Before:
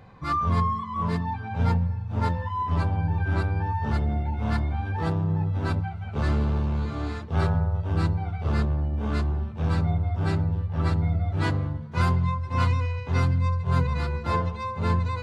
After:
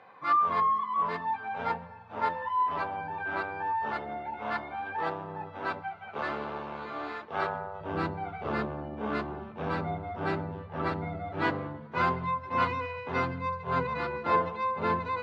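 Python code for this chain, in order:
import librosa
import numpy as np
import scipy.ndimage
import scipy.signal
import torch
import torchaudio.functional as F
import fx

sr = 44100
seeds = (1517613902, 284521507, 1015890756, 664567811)

y = fx.bandpass_edges(x, sr, low_hz=fx.steps((0.0, 560.0), (7.81, 310.0)), high_hz=2700.0)
y = F.gain(torch.from_numpy(y), 2.5).numpy()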